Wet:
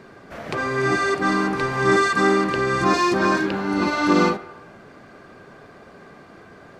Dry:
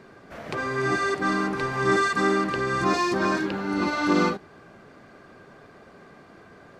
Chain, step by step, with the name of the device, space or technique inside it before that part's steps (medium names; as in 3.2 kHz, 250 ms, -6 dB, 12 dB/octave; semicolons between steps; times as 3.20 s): filtered reverb send (on a send: high-pass 380 Hz 24 dB/octave + low-pass 3.4 kHz + reverberation RT60 1.1 s, pre-delay 16 ms, DRR 12.5 dB); on the sum: trim +4 dB